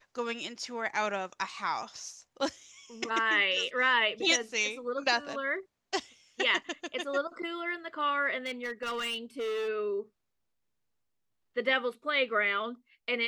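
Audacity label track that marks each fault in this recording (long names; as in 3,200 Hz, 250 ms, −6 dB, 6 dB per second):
8.460000	9.690000	clipping −30.5 dBFS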